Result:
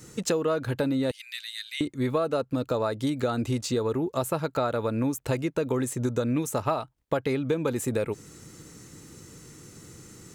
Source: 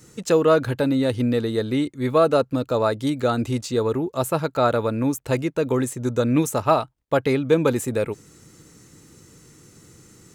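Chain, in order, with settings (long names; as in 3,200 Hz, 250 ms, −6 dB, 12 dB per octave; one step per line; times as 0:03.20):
0:01.11–0:01.81: Butterworth high-pass 2,000 Hz 36 dB per octave
downward compressor 5 to 1, threshold −26 dBFS, peak gain reduction 13 dB
level +2 dB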